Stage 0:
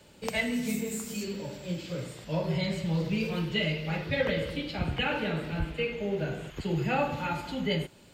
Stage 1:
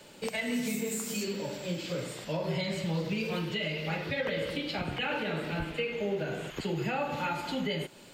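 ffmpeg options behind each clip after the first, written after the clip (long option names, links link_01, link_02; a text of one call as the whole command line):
ffmpeg -i in.wav -filter_complex "[0:a]equalizer=frequency=60:width_type=o:width=2.1:gain=-14.5,asplit=2[link_01][link_02];[link_02]acompressor=threshold=-38dB:ratio=6,volume=0.5dB[link_03];[link_01][link_03]amix=inputs=2:normalize=0,alimiter=limit=-21.5dB:level=0:latency=1:release=112,volume=-1dB" out.wav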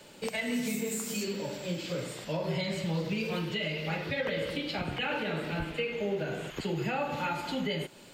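ffmpeg -i in.wav -af anull out.wav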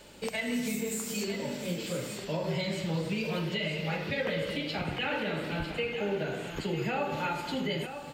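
ffmpeg -i in.wav -filter_complex "[0:a]aeval=exprs='val(0)+0.000794*(sin(2*PI*50*n/s)+sin(2*PI*2*50*n/s)/2+sin(2*PI*3*50*n/s)/3+sin(2*PI*4*50*n/s)/4+sin(2*PI*5*50*n/s)/5)':channel_layout=same,asplit=2[link_01][link_02];[link_02]aecho=0:1:951:0.335[link_03];[link_01][link_03]amix=inputs=2:normalize=0" out.wav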